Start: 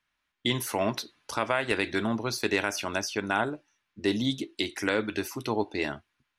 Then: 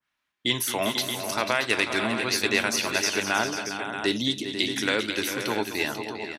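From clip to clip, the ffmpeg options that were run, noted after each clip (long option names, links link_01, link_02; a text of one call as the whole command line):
ffmpeg -i in.wav -filter_complex "[0:a]highpass=frequency=120:poles=1,asplit=2[link_01][link_02];[link_02]aecho=0:1:221|401|493|628:0.251|0.316|0.335|0.355[link_03];[link_01][link_03]amix=inputs=2:normalize=0,adynamicequalizer=threshold=0.01:dfrequency=1700:dqfactor=0.7:tfrequency=1700:tqfactor=0.7:attack=5:release=100:ratio=0.375:range=3.5:mode=boostabove:tftype=highshelf" out.wav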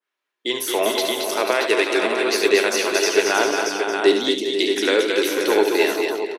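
ffmpeg -i in.wav -filter_complex "[0:a]dynaudnorm=framelen=130:gausssize=9:maxgain=11.5dB,highpass=frequency=400:width_type=q:width=3.4,asplit=2[link_01][link_02];[link_02]aecho=0:1:72|227:0.398|0.501[link_03];[link_01][link_03]amix=inputs=2:normalize=0,volume=-4dB" out.wav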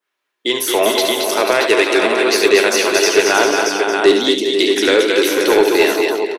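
ffmpeg -i in.wav -af "acontrast=62" out.wav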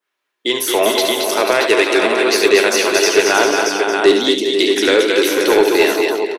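ffmpeg -i in.wav -af anull out.wav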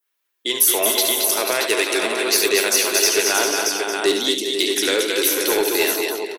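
ffmpeg -i in.wav -af "aemphasis=mode=production:type=75fm,volume=-7.5dB" out.wav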